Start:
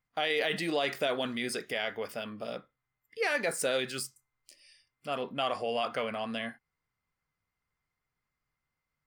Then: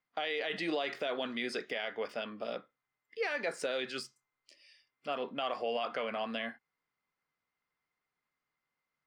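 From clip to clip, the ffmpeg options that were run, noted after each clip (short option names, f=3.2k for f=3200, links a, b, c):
-filter_complex "[0:a]acrossover=split=190 5900:gain=0.126 1 0.0891[a][b][c];[a][b][c]amix=inputs=3:normalize=0,alimiter=limit=-24dB:level=0:latency=1:release=157"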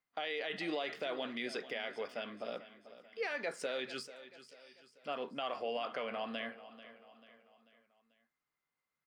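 -af "aecho=1:1:440|880|1320|1760:0.178|0.0836|0.0393|0.0185,volume=-3.5dB"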